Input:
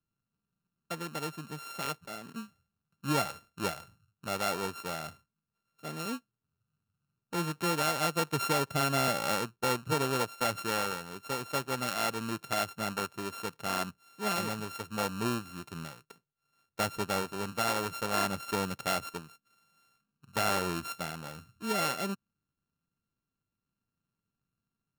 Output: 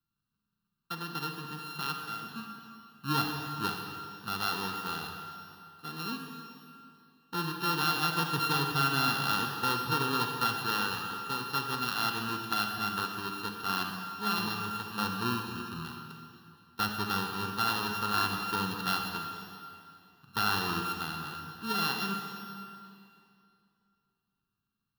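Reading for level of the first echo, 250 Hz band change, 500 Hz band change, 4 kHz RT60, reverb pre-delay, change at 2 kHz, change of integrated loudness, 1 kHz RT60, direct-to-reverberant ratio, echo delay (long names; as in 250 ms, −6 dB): no echo audible, 0.0 dB, −7.0 dB, 2.3 s, 38 ms, +2.5 dB, +1.0 dB, 2.5 s, 2.5 dB, no echo audible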